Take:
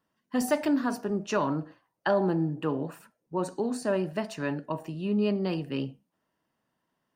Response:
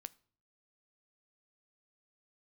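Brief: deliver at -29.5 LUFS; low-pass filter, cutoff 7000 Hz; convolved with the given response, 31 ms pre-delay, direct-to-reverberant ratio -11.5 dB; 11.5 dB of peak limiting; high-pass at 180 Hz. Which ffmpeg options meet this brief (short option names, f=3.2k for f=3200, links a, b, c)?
-filter_complex "[0:a]highpass=180,lowpass=7k,alimiter=level_in=0.5dB:limit=-24dB:level=0:latency=1,volume=-0.5dB,asplit=2[a][b];[1:a]atrim=start_sample=2205,adelay=31[c];[b][c]afir=irnorm=-1:irlink=0,volume=17dB[d];[a][d]amix=inputs=2:normalize=0,volume=-7dB"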